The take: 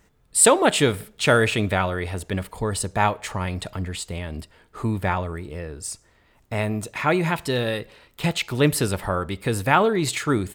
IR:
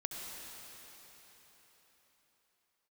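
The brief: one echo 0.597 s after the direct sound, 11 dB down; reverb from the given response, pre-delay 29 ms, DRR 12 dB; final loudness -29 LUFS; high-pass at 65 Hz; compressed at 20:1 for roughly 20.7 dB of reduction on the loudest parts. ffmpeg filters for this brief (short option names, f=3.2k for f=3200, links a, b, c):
-filter_complex "[0:a]highpass=65,acompressor=threshold=-31dB:ratio=20,aecho=1:1:597:0.282,asplit=2[a][b];[1:a]atrim=start_sample=2205,adelay=29[c];[b][c]afir=irnorm=-1:irlink=0,volume=-13dB[d];[a][d]amix=inputs=2:normalize=0,volume=7dB"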